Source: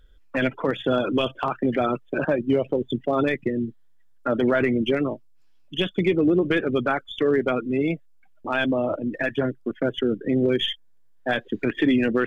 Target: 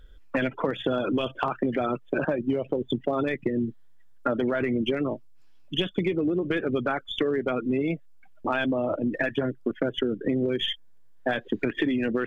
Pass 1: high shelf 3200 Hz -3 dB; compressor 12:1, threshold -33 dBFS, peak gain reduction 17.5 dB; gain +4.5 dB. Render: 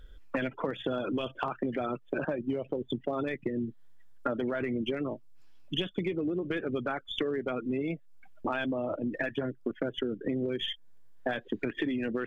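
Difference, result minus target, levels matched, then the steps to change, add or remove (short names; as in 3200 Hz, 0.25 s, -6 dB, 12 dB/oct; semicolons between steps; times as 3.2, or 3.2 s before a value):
compressor: peak gain reduction +6 dB
change: compressor 12:1, threshold -26.5 dBFS, peak gain reduction 11.5 dB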